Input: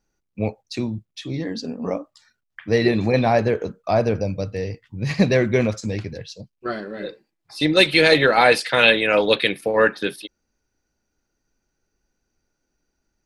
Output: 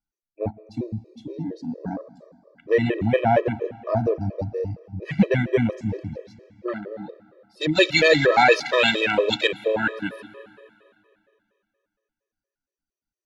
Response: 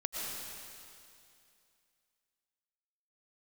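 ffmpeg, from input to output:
-filter_complex "[0:a]afwtdn=0.0316,asplit=2[link_01][link_02];[1:a]atrim=start_sample=2205[link_03];[link_02][link_03]afir=irnorm=-1:irlink=0,volume=-18.5dB[link_04];[link_01][link_04]amix=inputs=2:normalize=0,afftfilt=real='re*gt(sin(2*PI*4.3*pts/sr)*(1-2*mod(floor(b*sr/1024/330),2)),0)':imag='im*gt(sin(2*PI*4.3*pts/sr)*(1-2*mod(floor(b*sr/1024/330),2)),0)':win_size=1024:overlap=0.75"

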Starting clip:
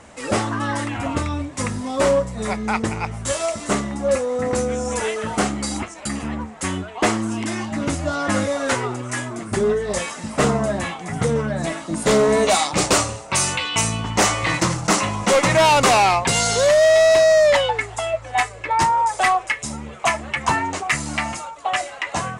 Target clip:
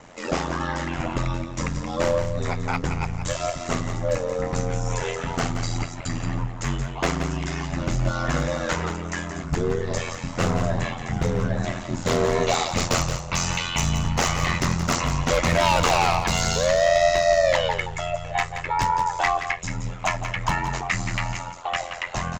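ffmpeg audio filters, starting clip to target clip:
ffmpeg -i in.wav -filter_complex "[0:a]aresample=16000,aresample=44100,asplit=2[link_01][link_02];[link_02]alimiter=limit=-19dB:level=0:latency=1:release=497,volume=-2dB[link_03];[link_01][link_03]amix=inputs=2:normalize=0,asubboost=boost=5:cutoff=110,aeval=exprs='0.376*(abs(mod(val(0)/0.376+3,4)-2)-1)':channel_layout=same,aecho=1:1:175:0.355,aeval=exprs='val(0)*sin(2*PI*43*n/s)':channel_layout=same,volume=-4dB" out.wav

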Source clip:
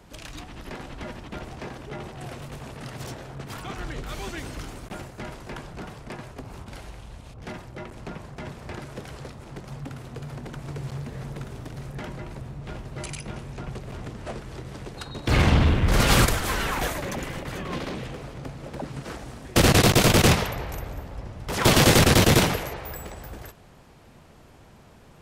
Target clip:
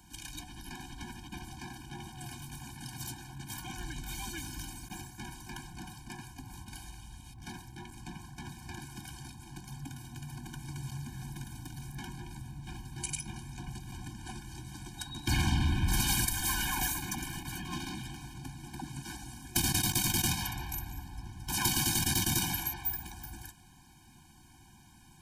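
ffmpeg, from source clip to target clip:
ffmpeg -i in.wav -af "crystalizer=i=3.5:c=0,acompressor=threshold=-16dB:ratio=16,afftfilt=real='re*eq(mod(floor(b*sr/1024/360),2),0)':imag='im*eq(mod(floor(b*sr/1024/360),2),0)':win_size=1024:overlap=0.75,volume=-6.5dB" out.wav

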